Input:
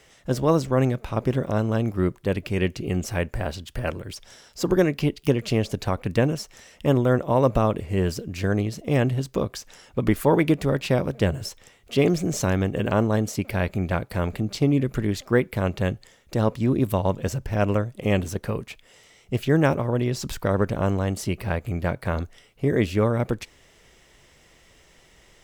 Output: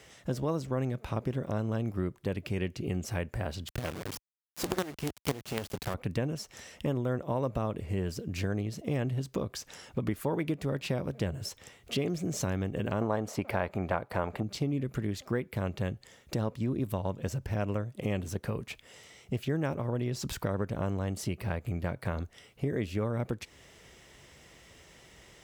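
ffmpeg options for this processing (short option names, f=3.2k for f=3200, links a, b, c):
-filter_complex "[0:a]asettb=1/sr,asplit=3[a][b][c];[a]atrim=end=3.684[d];[b]atrim=start=3.68:end=5.94,asetpts=PTS-STARTPTS,afade=t=in:d=0.004:c=qsin,afade=t=out:st=2.256:d=0.004:c=qsin,acrusher=bits=3:dc=4:mix=0:aa=0.000001[e];[c]atrim=start=5.936[f];[d][e]acrossfade=d=0.004:c1=hsin:c2=qsin[g];[g][f]acrossfade=d=0.004:c1=qsin:c2=hsin,asettb=1/sr,asplit=3[h][i][j];[h]atrim=end=13.014[k];[i]atrim=start=13.01:end=14.43,asetpts=PTS-STARTPTS,afade=t=in:d=0.004:c=qsin,afade=t=out:st=1.416:d=0.004:c=qsin,equalizer=f=900:t=o:w=2.4:g=14.5[l];[j]atrim=start=14.426[m];[k][l]acrossfade=d=0.004:c1=hsin:c2=qsin[n];[n][m]acrossfade=d=0.004:c1=qsin:c2=hsin,highpass=62,lowshelf=f=180:g=3.5,acompressor=threshold=-32dB:ratio=3"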